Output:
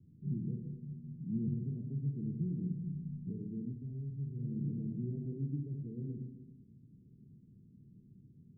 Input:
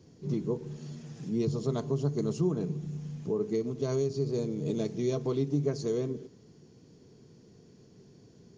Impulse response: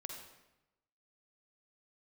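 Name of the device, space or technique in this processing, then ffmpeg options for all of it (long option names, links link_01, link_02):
club heard from the street: -filter_complex "[0:a]alimiter=limit=-22.5dB:level=0:latency=1:release=500,lowpass=frequency=230:width=0.5412,lowpass=frequency=230:width=1.3066[link_01];[1:a]atrim=start_sample=2205[link_02];[link_01][link_02]afir=irnorm=-1:irlink=0,asettb=1/sr,asplit=3[link_03][link_04][link_05];[link_03]atrim=end=3.734[link_06];[link_04]atrim=start=3.73:end=4.43,asetpts=PTS-STARTPTS,afade=type=in:duration=0.004:curve=qsin,afade=type=out:start_time=0.696:duration=0.004:curve=qsin,equalizer=frequency=440:width=0.73:gain=-7.5[link_07];[link_05]atrim=start=4.426[link_08];[link_06][link_07]acrossfade=duration=0.004:curve1=hsin:curve2=qsin[link_09];[link_09][link_08]acrossfade=duration=0.004:curve1=qsin:curve2=hsin,volume=3dB"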